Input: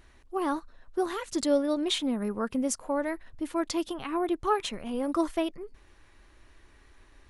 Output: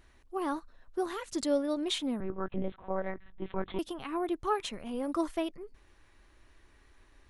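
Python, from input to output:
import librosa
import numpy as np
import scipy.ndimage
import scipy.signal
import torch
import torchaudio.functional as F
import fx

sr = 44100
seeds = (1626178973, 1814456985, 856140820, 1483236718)

y = fx.lpc_monotone(x, sr, seeds[0], pitch_hz=190.0, order=10, at=(2.2, 3.79))
y = y * 10.0 ** (-4.0 / 20.0)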